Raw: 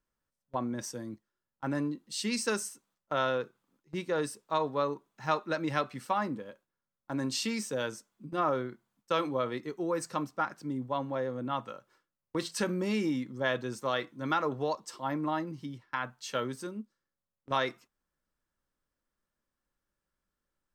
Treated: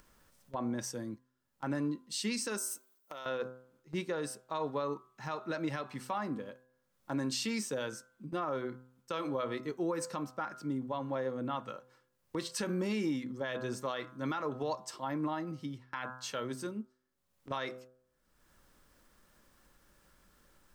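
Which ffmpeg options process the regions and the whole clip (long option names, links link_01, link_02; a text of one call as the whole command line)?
ffmpeg -i in.wav -filter_complex "[0:a]asettb=1/sr,asplit=3[link_01][link_02][link_03];[link_01]atrim=end=2.584[link_04];[link_02]atrim=start=2.58:end=3.26,asetpts=PTS-STARTPTS,afade=type=in:duration=0.004:curve=qsin,afade=type=out:start_time=0.676:duration=0.004:curve=qsin,bandreject=frequency=1600:width=7.1,acompressor=threshold=-41dB:ratio=8:attack=3.2:release=140:knee=1:detection=peak,aemphasis=mode=production:type=bsi[link_05];[link_03]atrim=start=3.256[link_06];[link_04][link_05]acrossfade=duration=0.004:curve1=hsin:curve2=qsin[link_07];[link_07][link_06]acrossfade=duration=0.004:curve1=qsin:curve2=hsin,bandreject=frequency=127.5:width_type=h:width=4,bandreject=frequency=255:width_type=h:width=4,bandreject=frequency=382.5:width_type=h:width=4,bandreject=frequency=510:width_type=h:width=4,bandreject=frequency=637.5:width_type=h:width=4,bandreject=frequency=765:width_type=h:width=4,bandreject=frequency=892.5:width_type=h:width=4,bandreject=frequency=1020:width_type=h:width=4,bandreject=frequency=1147.5:width_type=h:width=4,bandreject=frequency=1275:width_type=h:width=4,bandreject=frequency=1402.5:width_type=h:width=4,bandreject=frequency=1530:width_type=h:width=4,bandreject=frequency=1657.5:width_type=h:width=4,acompressor=mode=upward:threshold=-47dB:ratio=2.5,alimiter=level_in=1.5dB:limit=-24dB:level=0:latency=1:release=123,volume=-1.5dB" out.wav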